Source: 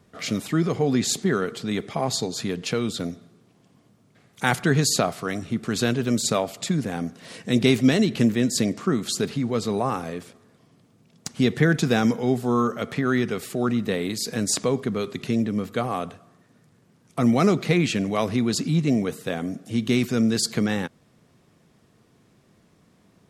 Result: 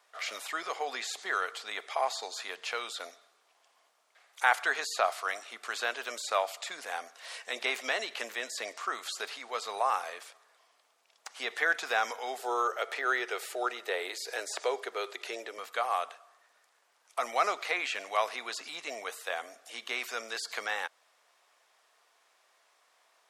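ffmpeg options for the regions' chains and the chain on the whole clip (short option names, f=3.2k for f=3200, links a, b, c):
-filter_complex "[0:a]asettb=1/sr,asplit=3[a][b][c];[a]atrim=end=12.394[d];[b]atrim=start=12.39:end=15.58,asetpts=PTS-STARTPTS,afade=t=in:d=0.004:c=qsin,afade=t=out:st=3.186:d=0.004:c=qsin,highpass=f=370:t=q:w=2.8,bandreject=f=1.1k:w=8.5[e];[c]atrim=start=15.576[f];[d][e]acrossfade=d=0.004:c1=hsin:c2=qsin[g];[g][f]acrossfade=d=0.004:c1=qsin:c2=hsin,acrossover=split=2500[h][i];[i]acompressor=threshold=-37dB:ratio=4:attack=1:release=60[j];[h][j]amix=inputs=2:normalize=0,highpass=f=700:w=0.5412,highpass=f=700:w=1.3066,highshelf=f=9.9k:g=-3.5"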